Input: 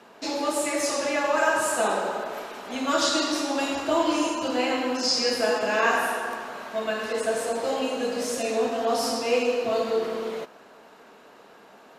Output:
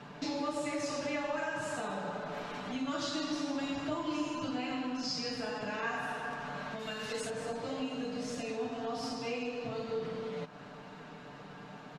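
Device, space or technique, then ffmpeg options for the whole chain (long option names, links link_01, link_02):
jukebox: -filter_complex "[0:a]asettb=1/sr,asplit=3[link_01][link_02][link_03];[link_01]atrim=end=6.794[link_04];[link_02]atrim=start=6.79:end=7.3,asetpts=PTS-STARTPTS,afade=type=in:duration=0.004:curve=qsin,afade=type=out:start_time=0.506:duration=0.004:curve=qsin,aemphasis=mode=production:type=75fm[link_05];[link_03]atrim=start=7.296[link_06];[link_04][link_05]acrossfade=duration=0.004:curve1=hsin:curve2=qsin[link_07];[link_07][link_06]acrossfade=duration=0.004:curve1=qsin:curve2=hsin,lowpass=5700,lowshelf=frequency=250:width_type=q:width=1.5:gain=12,acompressor=threshold=-39dB:ratio=3,aecho=1:1:6.8:0.6"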